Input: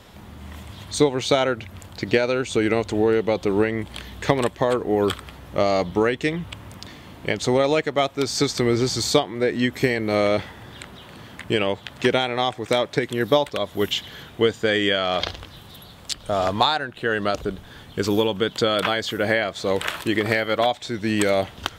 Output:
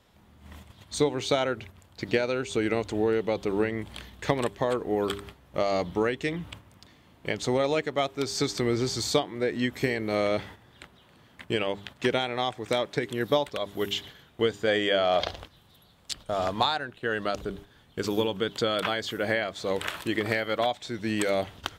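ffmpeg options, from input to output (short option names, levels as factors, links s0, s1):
-filter_complex "[0:a]asettb=1/sr,asplit=3[s0][s1][s2];[s0]atrim=end=14.674[s3];[s1]atrim=start=14.67:end=15.44,asetpts=PTS-STARTPTS,afade=t=in:d=0.004:c=qsin,afade=t=out:st=0.766:d=0.004:c=qsin,equalizer=f=650:w=1.6:g=7.5[s4];[s2]atrim=start=15.436[s5];[s3][s4]acrossfade=d=0.004:c1=hsin:c2=qsin[s6];[s6][s5]acrossfade=d=0.004:c1=qsin:c2=hsin,bandreject=f=100.3:t=h:w=4,bandreject=f=200.6:t=h:w=4,bandreject=f=300.9:t=h:w=4,bandreject=f=401.2:t=h:w=4,agate=range=0.355:threshold=0.0141:ratio=16:detection=peak,volume=0.501"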